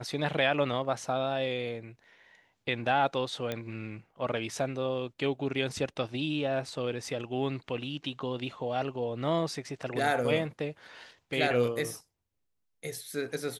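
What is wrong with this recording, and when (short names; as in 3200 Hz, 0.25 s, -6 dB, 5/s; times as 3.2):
3.52 pop -18 dBFS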